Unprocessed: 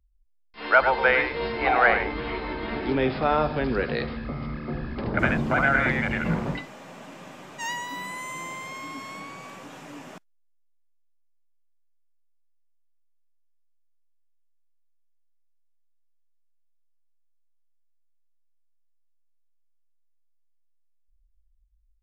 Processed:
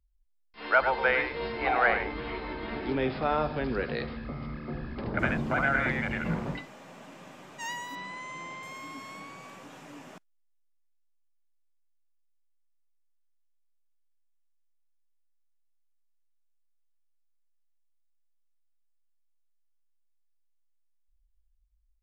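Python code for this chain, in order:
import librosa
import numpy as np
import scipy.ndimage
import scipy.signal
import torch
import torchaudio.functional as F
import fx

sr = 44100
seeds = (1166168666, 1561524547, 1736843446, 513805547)

y = fx.lowpass(x, sr, hz=5900.0, slope=24, at=(7.95, 8.63))
y = F.gain(torch.from_numpy(y), -5.0).numpy()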